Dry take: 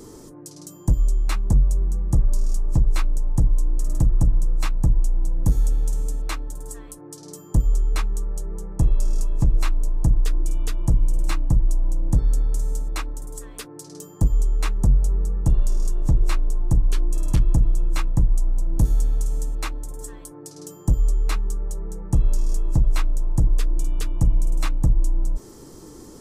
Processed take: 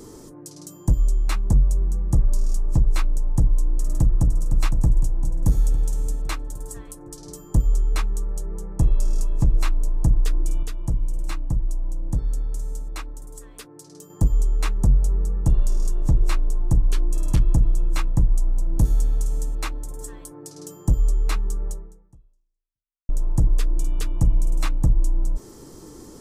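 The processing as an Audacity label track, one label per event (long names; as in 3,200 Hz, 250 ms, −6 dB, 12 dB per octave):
3.640000	4.390000	delay throw 510 ms, feedback 60%, level −8 dB
10.630000	14.100000	clip gain −5 dB
21.710000	23.090000	fade out exponential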